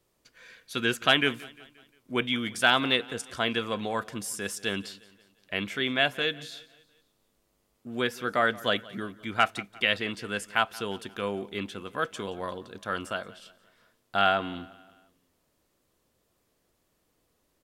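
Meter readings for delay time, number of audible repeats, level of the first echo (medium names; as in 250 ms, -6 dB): 176 ms, 3, -21.0 dB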